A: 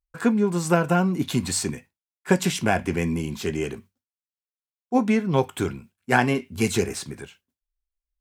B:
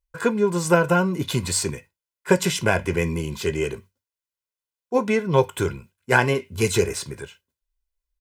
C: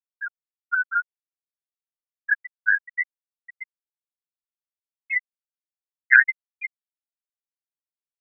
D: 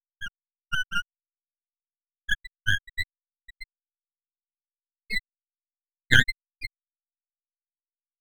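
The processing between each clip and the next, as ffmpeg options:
-af "aecho=1:1:2:0.58,volume=1.5dB"
-af "highpass=f=1.8k:t=q:w=6.6,afftfilt=real='re*gte(hypot(re,im),0.708)':imag='im*gte(hypot(re,im),0.708)':win_size=1024:overlap=0.75,volume=-1.5dB"
-af "aeval=exprs='max(val(0),0)':c=same"

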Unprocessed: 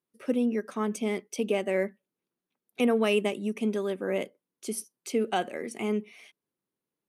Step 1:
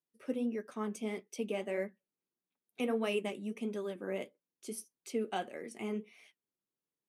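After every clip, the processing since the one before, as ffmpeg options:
-af "flanger=delay=6:depth=5.4:regen=-55:speed=1.6:shape=triangular,volume=-4.5dB"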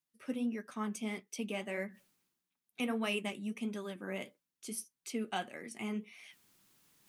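-af "equalizer=f=450:t=o:w=1.3:g=-10,areverse,acompressor=mode=upward:threshold=-53dB:ratio=2.5,areverse,volume=3.5dB"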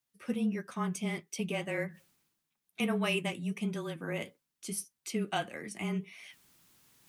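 -af "afreqshift=-26,volume=4dB"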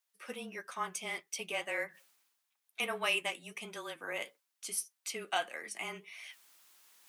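-af "highpass=650,volume=2dB"

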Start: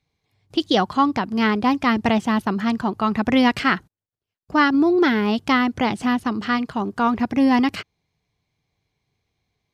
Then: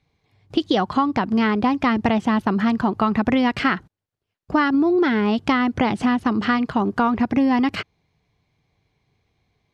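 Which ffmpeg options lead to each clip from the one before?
-af "aemphasis=mode=reproduction:type=50kf,acompressor=threshold=-23dB:ratio=6,volume=7dB"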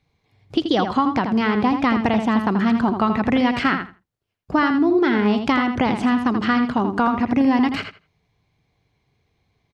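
-filter_complex "[0:a]asplit=2[a][b];[b]adelay=82,lowpass=f=4.9k:p=1,volume=-7dB,asplit=2[c][d];[d]adelay=82,lowpass=f=4.9k:p=1,volume=0.18,asplit=2[e][f];[f]adelay=82,lowpass=f=4.9k:p=1,volume=0.18[g];[a][c][e][g]amix=inputs=4:normalize=0"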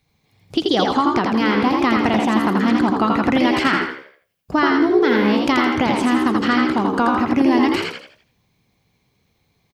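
-filter_complex "[0:a]aemphasis=mode=production:type=50kf,asplit=6[a][b][c][d][e][f];[b]adelay=83,afreqshift=68,volume=-3.5dB[g];[c]adelay=166,afreqshift=136,volume=-12.4dB[h];[d]adelay=249,afreqshift=204,volume=-21.2dB[i];[e]adelay=332,afreqshift=272,volume=-30.1dB[j];[f]adelay=415,afreqshift=340,volume=-39dB[k];[a][g][h][i][j][k]amix=inputs=6:normalize=0"

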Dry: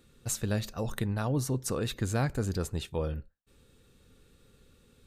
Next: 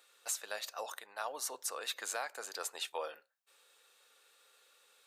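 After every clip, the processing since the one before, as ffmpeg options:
-af "highpass=f=650:w=0.5412,highpass=f=650:w=1.3066,alimiter=level_in=3dB:limit=-24dB:level=0:latency=1:release=478,volume=-3dB,volume=2.5dB"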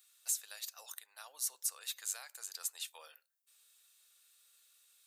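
-af "aderivative,volume=2dB"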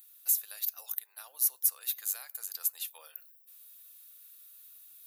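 -af "areverse,acompressor=mode=upward:threshold=-59dB:ratio=2.5,areverse,aexciter=amount=9.1:drive=2.9:freq=11k"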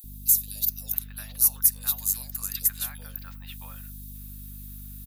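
-filter_complex "[0:a]aeval=exprs='val(0)+0.00398*(sin(2*PI*50*n/s)+sin(2*PI*2*50*n/s)/2+sin(2*PI*3*50*n/s)/3+sin(2*PI*4*50*n/s)/4+sin(2*PI*5*50*n/s)/5)':c=same,acrossover=split=570|3000[a][b][c];[a]adelay=40[d];[b]adelay=670[e];[d][e][c]amix=inputs=3:normalize=0,volume=7.5dB"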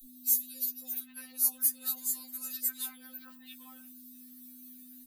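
-af "asoftclip=type=tanh:threshold=-4.5dB,afftfilt=real='re*3.46*eq(mod(b,12),0)':imag='im*3.46*eq(mod(b,12),0)':win_size=2048:overlap=0.75,volume=-4dB"

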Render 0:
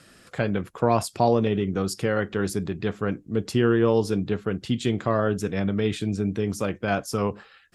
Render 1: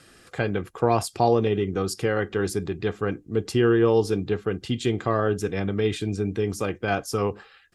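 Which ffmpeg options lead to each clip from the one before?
-af "aecho=1:1:2.5:0.36"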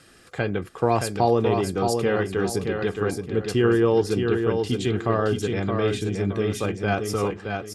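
-af "aecho=1:1:621|1242|1863|2484:0.562|0.174|0.054|0.0168"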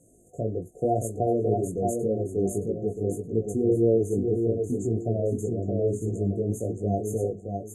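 -af "flanger=delay=17.5:depth=3:speed=1.8,afftfilt=real='re*(1-between(b*sr/4096,740,6200))':imag='im*(1-between(b*sr/4096,740,6200))':win_size=4096:overlap=0.75"

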